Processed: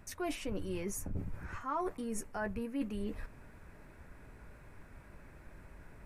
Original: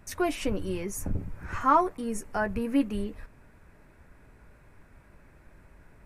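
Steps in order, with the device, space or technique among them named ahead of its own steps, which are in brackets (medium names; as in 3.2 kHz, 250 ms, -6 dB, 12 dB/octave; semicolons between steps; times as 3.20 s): compression on the reversed sound (reverse; compression 5:1, threshold -36 dBFS, peak gain reduction 17.5 dB; reverse); trim +1 dB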